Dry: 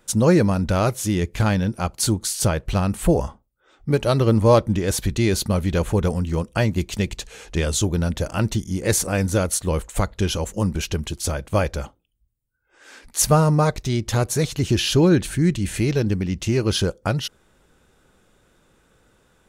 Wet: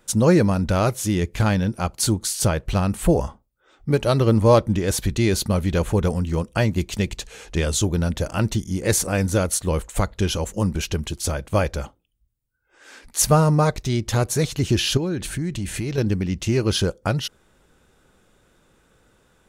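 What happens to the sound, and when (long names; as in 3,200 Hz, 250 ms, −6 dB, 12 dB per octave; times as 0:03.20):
0:14.97–0:15.98: downward compressor 5 to 1, threshold −22 dBFS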